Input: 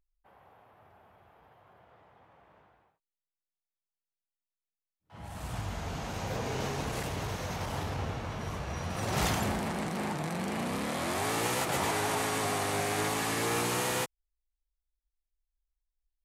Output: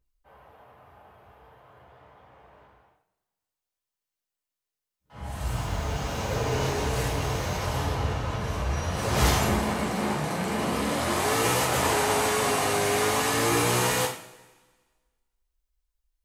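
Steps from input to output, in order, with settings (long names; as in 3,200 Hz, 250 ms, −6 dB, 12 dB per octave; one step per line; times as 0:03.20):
0:05.47–0:07.57: hold until the input has moved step −56.5 dBFS
coupled-rooms reverb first 0.44 s, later 1.5 s, from −19 dB, DRR −5 dB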